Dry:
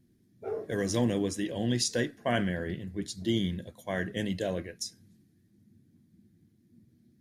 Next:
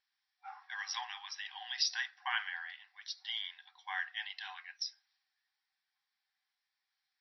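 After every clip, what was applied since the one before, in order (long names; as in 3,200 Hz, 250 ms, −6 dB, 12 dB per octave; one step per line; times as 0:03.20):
brick-wall band-pass 740–5,800 Hz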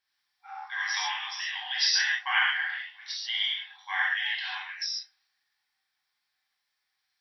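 dynamic equaliser 2,200 Hz, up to +6 dB, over −50 dBFS, Q 0.76
reverb whose tail is shaped and stops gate 170 ms flat, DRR −6 dB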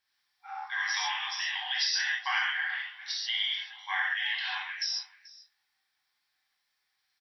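downward compressor 3 to 1, threshold −29 dBFS, peak gain reduction 7 dB
single-tap delay 435 ms −20.5 dB
level +1.5 dB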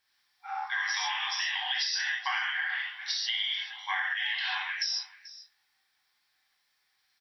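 downward compressor, threshold −32 dBFS, peak gain reduction 7.5 dB
level +4.5 dB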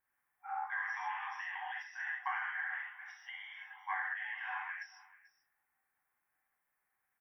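Butterworth band-reject 4,300 Hz, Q 0.52
level −3.5 dB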